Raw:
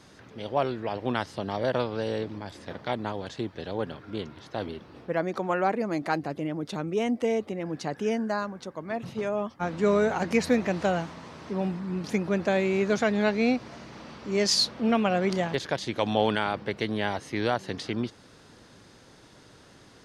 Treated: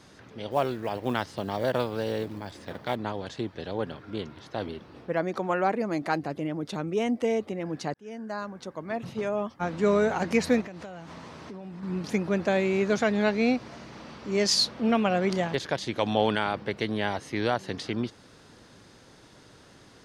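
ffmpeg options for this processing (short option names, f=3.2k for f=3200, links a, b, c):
-filter_complex "[0:a]asettb=1/sr,asplit=3[a][b][c];[a]atrim=end=0.514[d];[b]atrim=start=0.51:end=2.96,asetpts=PTS-STARTPTS,afade=t=in:d=0.004:c=qsin,afade=t=out:st=2.446:d=0.004:c=qsin,acrusher=bits=7:mode=log:mix=0:aa=0.000001[e];[c]atrim=start=2.956[f];[d][e]acrossfade=d=0.004:c1=hsin:c2=qsin[g];[g][f]acrossfade=d=0.004:c1=qsin:c2=hsin,asettb=1/sr,asplit=3[h][i][j];[h]atrim=end=10.614[k];[i]atrim=start=10.61:end=11.83,asetpts=PTS-STARTPTS,afade=t=in:d=0.004:c=qsin,afade=t=out:st=1.216:d=0.004:c=qsin,acompressor=threshold=-37dB:ratio=8:attack=3.2:release=140:knee=1:detection=peak[l];[j]atrim=start=11.826[m];[k][l]acrossfade=d=0.004:c1=hsin:c2=qsin[n];[n][m]acrossfade=d=0.004:c1=qsin:c2=hsin,asplit=2[o][p];[o]atrim=end=7.94,asetpts=PTS-STARTPTS,afade=t=out:st=7.936:d=0.004:c=hsin[q];[p]atrim=start=7.94,asetpts=PTS-STARTPTS,afade=t=in:d=0.75[r];[q][r]concat=n=2:v=0:a=1"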